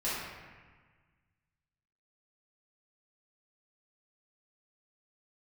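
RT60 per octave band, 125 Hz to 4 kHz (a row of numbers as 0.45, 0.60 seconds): 2.2, 1.8, 1.4, 1.5, 1.5, 1.1 seconds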